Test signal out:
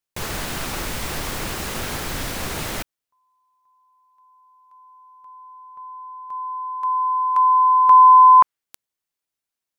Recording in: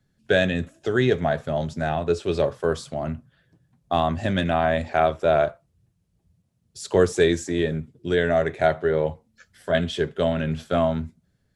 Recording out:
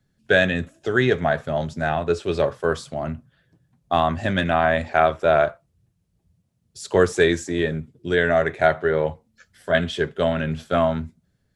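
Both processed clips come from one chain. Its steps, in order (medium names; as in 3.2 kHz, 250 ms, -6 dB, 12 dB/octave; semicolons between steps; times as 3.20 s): dynamic bell 1.5 kHz, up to +6 dB, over -34 dBFS, Q 0.83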